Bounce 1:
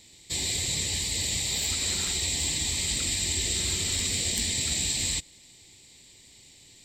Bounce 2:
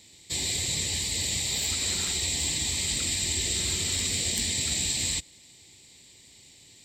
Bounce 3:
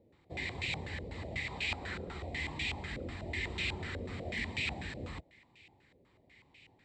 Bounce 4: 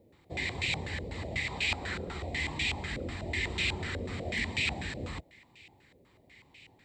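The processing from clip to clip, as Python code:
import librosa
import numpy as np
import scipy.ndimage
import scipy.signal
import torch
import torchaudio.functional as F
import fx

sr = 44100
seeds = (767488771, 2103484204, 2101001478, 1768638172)

y1 = scipy.signal.sosfilt(scipy.signal.butter(2, 51.0, 'highpass', fs=sr, output='sos'), x)
y2 = fx.filter_held_lowpass(y1, sr, hz=8.1, low_hz=530.0, high_hz=2500.0)
y2 = y2 * 10.0 ** (-5.5 / 20.0)
y3 = fx.high_shelf(y2, sr, hz=6400.0, db=7.5)
y3 = y3 * 10.0 ** (4.0 / 20.0)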